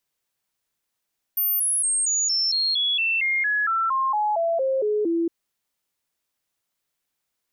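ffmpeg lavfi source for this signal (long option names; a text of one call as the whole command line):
ffmpeg -f lavfi -i "aevalsrc='0.106*clip(min(mod(t,0.23),0.23-mod(t,0.23))/0.005,0,1)*sin(2*PI*13500*pow(2,-floor(t/0.23)/3)*mod(t,0.23))':duration=3.91:sample_rate=44100" out.wav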